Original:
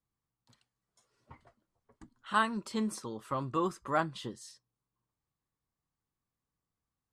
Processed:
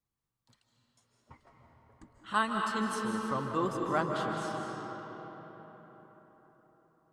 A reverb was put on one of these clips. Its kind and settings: digital reverb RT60 4.7 s, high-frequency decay 0.55×, pre-delay 0.115 s, DRR 0 dB; gain -1 dB

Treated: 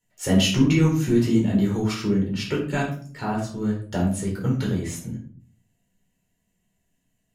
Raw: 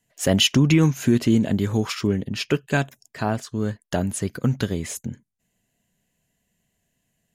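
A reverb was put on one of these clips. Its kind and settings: shoebox room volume 440 m³, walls furnished, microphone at 4.4 m; gain -9 dB

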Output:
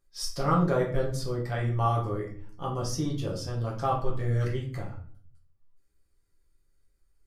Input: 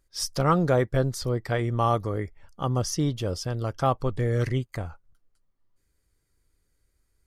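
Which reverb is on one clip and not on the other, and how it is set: shoebox room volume 53 m³, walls mixed, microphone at 0.87 m; gain -8.5 dB

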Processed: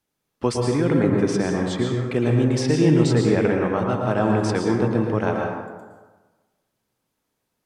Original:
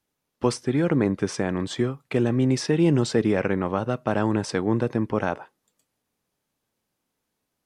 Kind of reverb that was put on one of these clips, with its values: plate-style reverb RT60 1.3 s, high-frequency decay 0.5×, pre-delay 0.1 s, DRR 0.5 dB

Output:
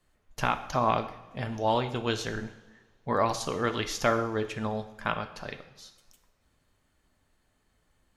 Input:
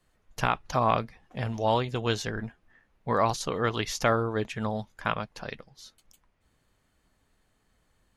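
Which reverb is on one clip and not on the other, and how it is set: two-slope reverb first 0.76 s, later 2.2 s, DRR 8 dB; gain -1.5 dB

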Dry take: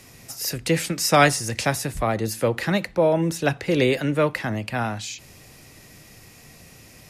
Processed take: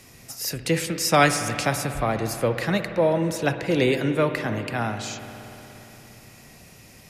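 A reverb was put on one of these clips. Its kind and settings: spring tank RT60 3.8 s, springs 58 ms, chirp 80 ms, DRR 8 dB; gain -1.5 dB

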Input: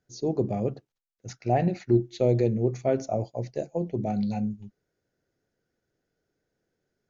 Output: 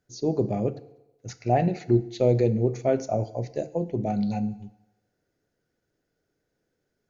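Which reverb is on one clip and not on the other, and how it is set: FDN reverb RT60 1 s, low-frequency decay 0.8×, high-frequency decay 0.85×, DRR 13.5 dB; gain +1.5 dB

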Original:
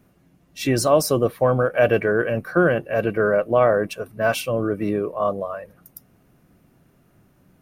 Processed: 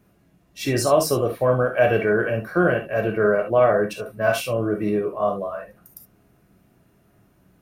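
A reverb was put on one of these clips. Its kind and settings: non-linear reverb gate 90 ms flat, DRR 2 dB; gain -2.5 dB

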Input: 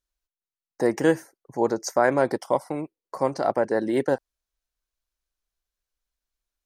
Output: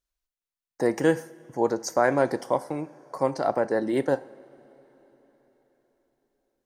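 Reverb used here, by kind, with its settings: two-slope reverb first 0.57 s, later 4.6 s, from -18 dB, DRR 13.5 dB; gain -1.5 dB

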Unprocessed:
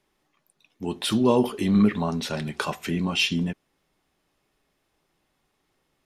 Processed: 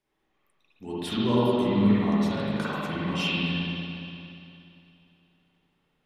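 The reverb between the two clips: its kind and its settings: spring tank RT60 2.8 s, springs 49/58 ms, chirp 30 ms, DRR -9.5 dB; gain -11 dB

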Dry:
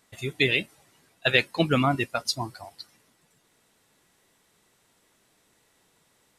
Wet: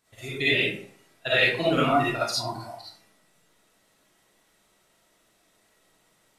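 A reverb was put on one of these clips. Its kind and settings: digital reverb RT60 0.57 s, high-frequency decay 0.6×, pre-delay 15 ms, DRR -9.5 dB; gain -8.5 dB

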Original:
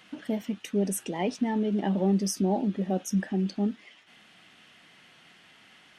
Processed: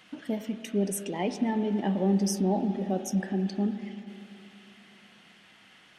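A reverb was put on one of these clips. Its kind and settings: spring tank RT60 3.1 s, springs 35/48 ms, chirp 75 ms, DRR 9 dB; gain -1 dB

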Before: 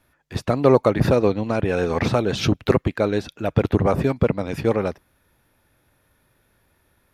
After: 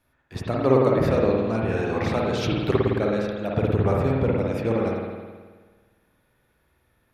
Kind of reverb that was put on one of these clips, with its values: spring tank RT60 1.5 s, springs 53 ms, chirp 35 ms, DRR -2.5 dB; gain -7 dB

